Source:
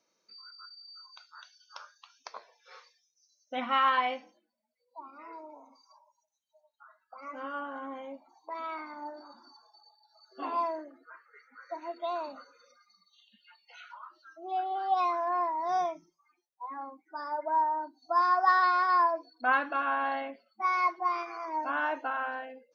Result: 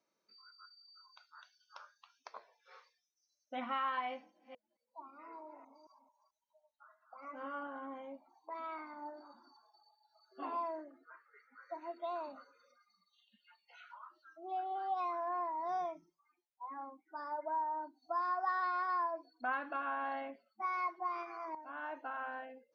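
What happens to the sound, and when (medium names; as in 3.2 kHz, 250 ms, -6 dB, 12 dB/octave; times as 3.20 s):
4.11–7.67 s: chunks repeated in reverse 220 ms, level -9 dB
21.55–22.44 s: fade in, from -14.5 dB
whole clip: treble shelf 4 kHz -11 dB; band-stop 490 Hz, Q 16; compression 2:1, threshold -31 dBFS; trim -5 dB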